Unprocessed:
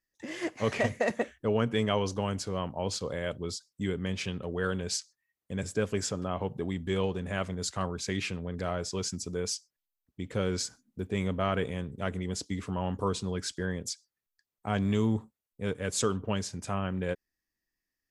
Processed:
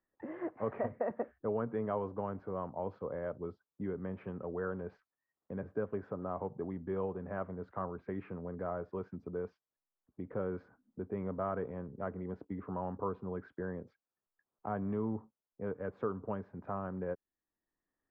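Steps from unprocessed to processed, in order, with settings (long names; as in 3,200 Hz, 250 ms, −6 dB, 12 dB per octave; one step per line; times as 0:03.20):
low-pass filter 1,300 Hz 24 dB per octave
low-shelf EQ 170 Hz −11 dB
multiband upward and downward compressor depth 40%
level −3.5 dB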